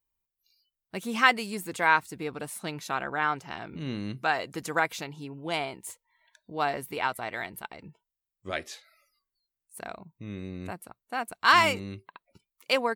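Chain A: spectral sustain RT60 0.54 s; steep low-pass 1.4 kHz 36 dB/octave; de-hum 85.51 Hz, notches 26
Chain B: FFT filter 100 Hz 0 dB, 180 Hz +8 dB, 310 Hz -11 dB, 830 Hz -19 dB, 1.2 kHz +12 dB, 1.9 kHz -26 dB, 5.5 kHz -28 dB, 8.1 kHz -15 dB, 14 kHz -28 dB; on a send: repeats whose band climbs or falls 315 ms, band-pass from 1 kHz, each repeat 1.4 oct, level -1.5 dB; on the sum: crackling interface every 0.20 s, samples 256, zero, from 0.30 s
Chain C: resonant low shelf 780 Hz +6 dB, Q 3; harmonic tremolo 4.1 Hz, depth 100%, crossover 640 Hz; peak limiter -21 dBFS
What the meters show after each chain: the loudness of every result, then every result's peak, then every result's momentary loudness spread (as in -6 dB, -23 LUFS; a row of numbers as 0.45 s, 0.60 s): -30.0 LUFS, -27.0 LUFS, -35.0 LUFS; -9.5 dBFS, -4.5 dBFS, -21.0 dBFS; 17 LU, 22 LU, 11 LU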